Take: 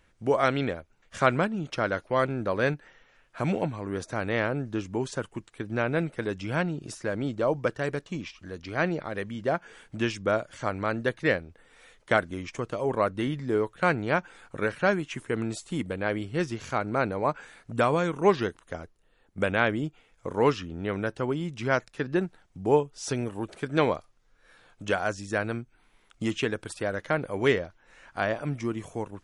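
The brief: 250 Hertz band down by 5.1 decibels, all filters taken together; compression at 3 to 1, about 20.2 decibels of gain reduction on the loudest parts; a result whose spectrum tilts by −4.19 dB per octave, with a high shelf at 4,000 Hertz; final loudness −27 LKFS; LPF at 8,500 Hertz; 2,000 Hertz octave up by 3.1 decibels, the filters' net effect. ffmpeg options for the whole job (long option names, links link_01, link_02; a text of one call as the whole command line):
ffmpeg -i in.wav -af "lowpass=8500,equalizer=frequency=250:width_type=o:gain=-7.5,equalizer=frequency=2000:width_type=o:gain=5,highshelf=frequency=4000:gain=-3.5,acompressor=threshold=-45dB:ratio=3,volume=18dB" out.wav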